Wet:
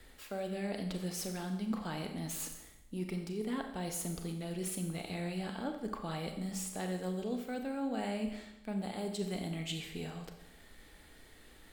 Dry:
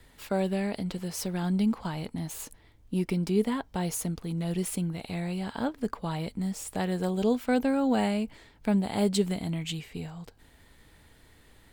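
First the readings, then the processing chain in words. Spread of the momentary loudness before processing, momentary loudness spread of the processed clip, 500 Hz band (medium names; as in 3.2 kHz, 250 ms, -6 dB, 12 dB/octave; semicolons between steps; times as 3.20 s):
10 LU, 14 LU, -9.0 dB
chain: peaking EQ 110 Hz -9.5 dB 1.1 oct; band-stop 970 Hz, Q 8.5; reverse; compression 6:1, threshold -36 dBFS, peak gain reduction 14 dB; reverse; Schroeder reverb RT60 0.85 s, combs from 29 ms, DRR 5 dB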